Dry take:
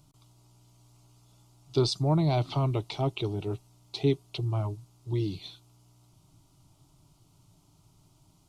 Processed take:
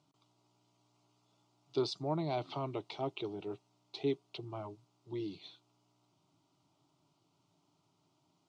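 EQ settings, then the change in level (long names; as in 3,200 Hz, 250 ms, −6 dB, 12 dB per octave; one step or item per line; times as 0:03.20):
high-pass filter 250 Hz 12 dB per octave
high-frequency loss of the air 110 metres
−5.5 dB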